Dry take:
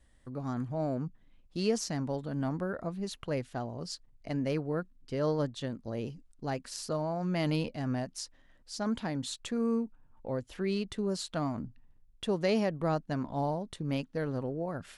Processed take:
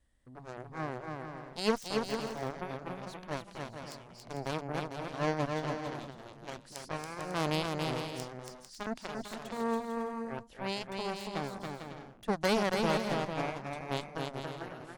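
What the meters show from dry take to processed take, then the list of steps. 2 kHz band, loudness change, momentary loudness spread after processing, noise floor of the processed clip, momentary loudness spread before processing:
+4.5 dB, -2.0 dB, 14 LU, -54 dBFS, 10 LU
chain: Chebyshev shaper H 7 -14 dB, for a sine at -16 dBFS; bouncing-ball echo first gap 280 ms, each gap 0.6×, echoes 5

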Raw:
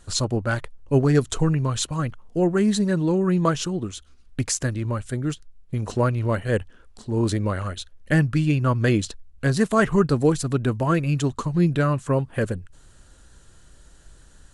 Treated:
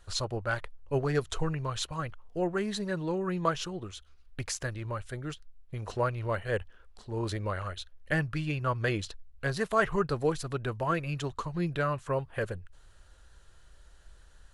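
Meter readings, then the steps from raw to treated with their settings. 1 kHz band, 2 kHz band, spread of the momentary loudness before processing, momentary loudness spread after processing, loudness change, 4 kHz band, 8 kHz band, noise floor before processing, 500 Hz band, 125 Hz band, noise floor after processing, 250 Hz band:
-4.5 dB, -4.5 dB, 10 LU, 11 LU, -9.5 dB, -6.0 dB, -11.0 dB, -51 dBFS, -7.5 dB, -11.5 dB, -57 dBFS, -13.0 dB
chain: graphic EQ 125/250/8000 Hz -5/-12/-9 dB; trim -4 dB

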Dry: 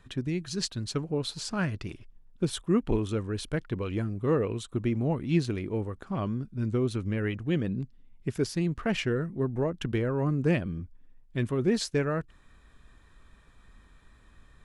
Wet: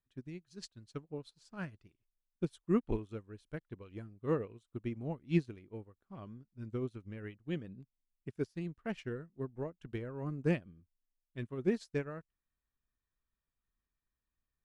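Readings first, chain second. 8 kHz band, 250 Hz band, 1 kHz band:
under -20 dB, -9.5 dB, -11.0 dB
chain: upward expansion 2.5:1, over -41 dBFS; trim -3 dB

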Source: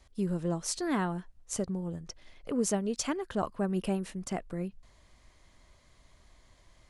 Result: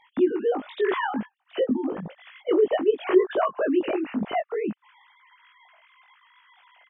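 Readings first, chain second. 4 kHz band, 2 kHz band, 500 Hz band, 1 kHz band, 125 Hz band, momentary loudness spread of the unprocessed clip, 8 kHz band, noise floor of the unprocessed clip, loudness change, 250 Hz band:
+2.5 dB, +10.0 dB, +13.0 dB, +8.5 dB, -8.5 dB, 10 LU, under -40 dB, -63 dBFS, +8.0 dB, +5.5 dB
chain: formants replaced by sine waves; in parallel at +2 dB: compression, threshold -41 dBFS, peak gain reduction 19.5 dB; on the sum: doubling 19 ms -3.5 dB; trim +4.5 dB

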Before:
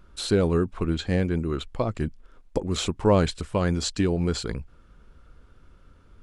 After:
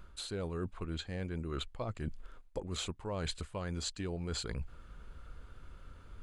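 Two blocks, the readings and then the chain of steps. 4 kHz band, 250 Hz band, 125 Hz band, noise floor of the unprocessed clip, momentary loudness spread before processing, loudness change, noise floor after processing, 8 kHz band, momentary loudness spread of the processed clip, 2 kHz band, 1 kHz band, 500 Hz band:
-8.5 dB, -16.0 dB, -13.0 dB, -55 dBFS, 11 LU, -14.0 dB, -56 dBFS, -9.0 dB, 17 LU, -11.5 dB, -14.0 dB, -16.0 dB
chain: peaking EQ 270 Hz -5 dB 1.9 oct; band-stop 5.5 kHz, Q 8.1; reverse; compression 12:1, threshold -37 dBFS, peak gain reduction 20.5 dB; reverse; trim +2.5 dB

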